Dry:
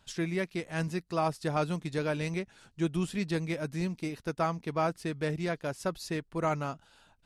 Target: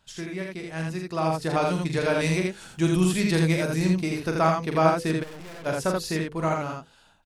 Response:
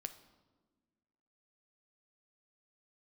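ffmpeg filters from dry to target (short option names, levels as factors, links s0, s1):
-filter_complex "[0:a]dynaudnorm=f=250:g=11:m=3.76,bandreject=f=50:t=h:w=6,bandreject=f=100:t=h:w=6,bandreject=f=150:t=h:w=6,bandreject=f=200:t=h:w=6,bandreject=f=250:t=h:w=6,bandreject=f=300:t=h:w=6,bandreject=f=350:t=h:w=6,bandreject=f=400:t=h:w=6,bandreject=f=450:t=h:w=6,bandreject=f=500:t=h:w=6,asplit=2[s0][s1];[s1]acompressor=threshold=0.02:ratio=6,volume=0.708[s2];[s0][s2]amix=inputs=2:normalize=0,asettb=1/sr,asplit=3[s3][s4][s5];[s3]atrim=end=2.194[s6];[s4]atrim=start=2.19:end=3.82,asetpts=PTS-STARTPTS,afade=t=in:d=0.004:c=qsin,afade=t=out:st=1.626:d=0.004:c=qsin,highshelf=f=7300:g=8[s7];[s5]atrim=start=3.816[s8];[s6][s7]acrossfade=d=0.004:c1=hsin:c2=qsin[s9];[s9][s8]acrossfade=d=0.004:c1=qsin:c2=hsin,asplit=2[s10][s11];[s11]aecho=0:1:43.73|81.63:0.501|0.708[s12];[s10][s12]amix=inputs=2:normalize=0,asplit=3[s13][s14][s15];[s13]afade=t=out:st=5.22:d=0.02[s16];[s14]aeval=exprs='(tanh(56.2*val(0)+0.6)-tanh(0.6))/56.2':c=same,afade=t=in:st=5.22:d=0.02,afade=t=out:st=5.65:d=0.02[s17];[s15]afade=t=in:st=5.65:d=0.02[s18];[s16][s17][s18]amix=inputs=3:normalize=0,volume=0.531"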